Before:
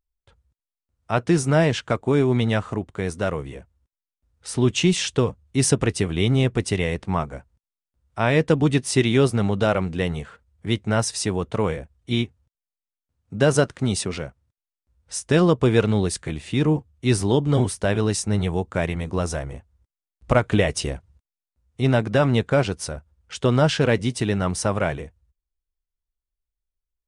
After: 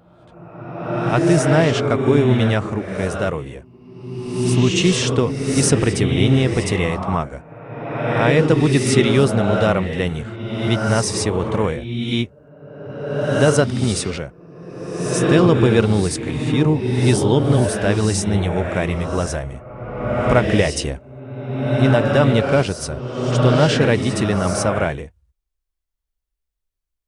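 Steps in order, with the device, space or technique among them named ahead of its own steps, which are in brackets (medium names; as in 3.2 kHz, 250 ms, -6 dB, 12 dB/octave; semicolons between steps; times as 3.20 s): reverse reverb (reverse; reverberation RT60 1.8 s, pre-delay 48 ms, DRR 2.5 dB; reverse); trim +2.5 dB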